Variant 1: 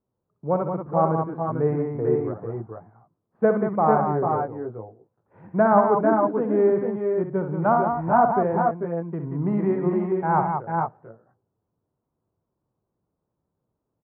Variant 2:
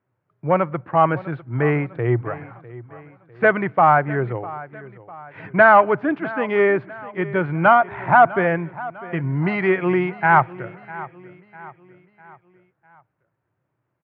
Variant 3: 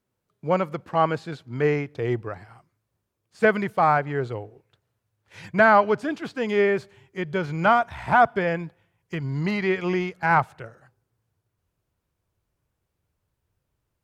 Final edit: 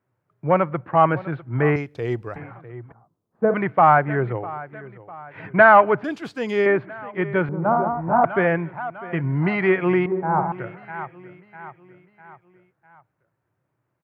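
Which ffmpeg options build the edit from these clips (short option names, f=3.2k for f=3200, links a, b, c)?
-filter_complex "[2:a]asplit=2[a][b];[0:a]asplit=3[c][d][e];[1:a]asplit=6[f][g][h][i][j][k];[f]atrim=end=1.762[l];[a]atrim=start=1.758:end=2.362[m];[g]atrim=start=2.358:end=2.922[n];[c]atrim=start=2.918:end=3.542[o];[h]atrim=start=3.538:end=6.042[p];[b]atrim=start=6.038:end=6.662[q];[i]atrim=start=6.658:end=7.492[r];[d]atrim=start=7.488:end=8.242[s];[j]atrim=start=8.238:end=10.062[t];[e]atrim=start=10.058:end=10.522[u];[k]atrim=start=10.518[v];[l][m]acrossfade=d=0.004:c1=hsin:c2=hsin[w];[w][n]acrossfade=d=0.004:c1=hsin:c2=hsin[x];[x][o]acrossfade=d=0.004:c1=hsin:c2=hsin[y];[y][p]acrossfade=d=0.004:c1=hsin:c2=hsin[z];[z][q]acrossfade=d=0.004:c1=hsin:c2=hsin[aa];[aa][r]acrossfade=d=0.004:c1=hsin:c2=hsin[ab];[ab][s]acrossfade=d=0.004:c1=hsin:c2=hsin[ac];[ac][t]acrossfade=d=0.004:c1=hsin:c2=hsin[ad];[ad][u]acrossfade=d=0.004:c1=hsin:c2=hsin[ae];[ae][v]acrossfade=d=0.004:c1=hsin:c2=hsin"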